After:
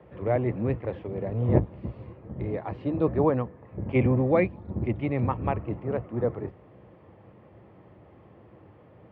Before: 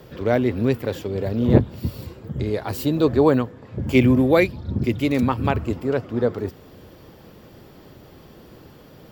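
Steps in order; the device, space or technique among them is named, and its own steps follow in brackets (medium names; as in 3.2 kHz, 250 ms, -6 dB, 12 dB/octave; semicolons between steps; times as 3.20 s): sub-octave bass pedal (octave divider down 1 oct, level +1 dB; cabinet simulation 81–2100 Hz, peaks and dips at 85 Hz -6 dB, 150 Hz -8 dB, 250 Hz -8 dB, 410 Hz -4 dB, 1.5 kHz -9 dB); trim -4 dB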